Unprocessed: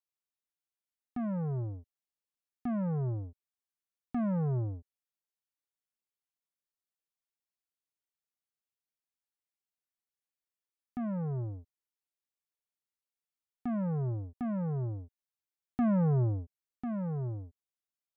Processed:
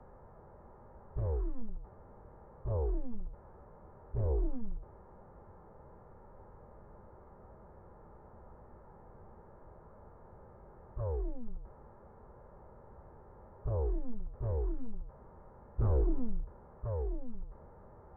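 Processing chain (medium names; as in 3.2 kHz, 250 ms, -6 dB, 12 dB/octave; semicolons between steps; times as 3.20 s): one-bit delta coder 16 kbps, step -42 dBFS; low-pass 1.5 kHz 24 dB/octave; bass shelf 260 Hz +10 dB; comb of notches 410 Hz; formant shift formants -6 st; frequency shift -120 Hz; loudspeaker Doppler distortion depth 0.59 ms; trim -4 dB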